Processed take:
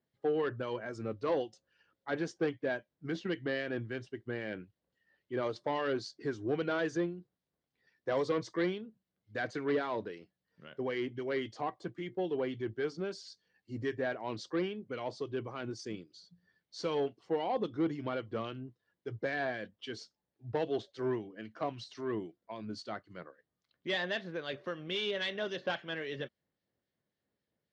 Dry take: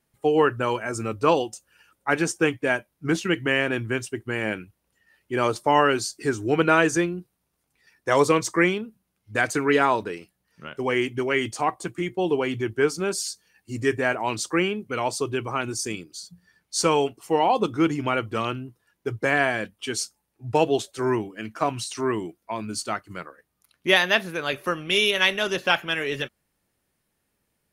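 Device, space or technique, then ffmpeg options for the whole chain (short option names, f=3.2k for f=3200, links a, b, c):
guitar amplifier with harmonic tremolo: -filter_complex "[0:a]acrossover=split=1800[a][b];[a]aeval=exprs='val(0)*(1-0.5/2+0.5/2*cos(2*PI*3.7*n/s))':c=same[c];[b]aeval=exprs='val(0)*(1-0.5/2-0.5/2*cos(2*PI*3.7*n/s))':c=same[d];[c][d]amix=inputs=2:normalize=0,asoftclip=type=tanh:threshold=-17.5dB,highpass=88,equalizer=f=530:t=q:w=4:g=3,equalizer=f=900:t=q:w=4:g=-5,equalizer=f=1.3k:t=q:w=4:g=-6,equalizer=f=2.5k:t=q:w=4:g=-9,lowpass=f=4.5k:w=0.5412,lowpass=f=4.5k:w=1.3066,volume=-7dB"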